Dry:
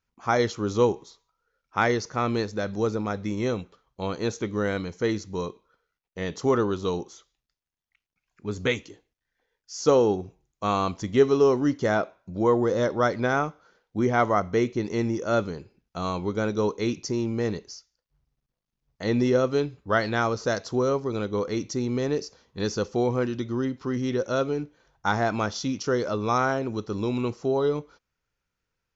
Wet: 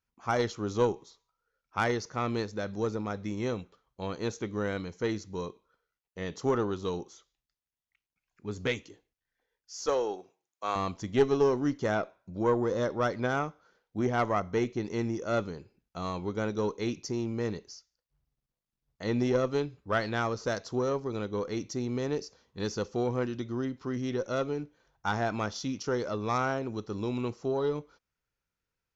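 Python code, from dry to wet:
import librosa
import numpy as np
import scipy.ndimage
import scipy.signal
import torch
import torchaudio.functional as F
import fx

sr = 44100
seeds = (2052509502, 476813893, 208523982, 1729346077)

y = fx.highpass(x, sr, hz=510.0, slope=12, at=(9.86, 10.76))
y = fx.cheby_harmonics(y, sr, harmonics=(4, 6), levels_db=(-17, -27), full_scale_db=-8.0)
y = y * 10.0 ** (-5.5 / 20.0)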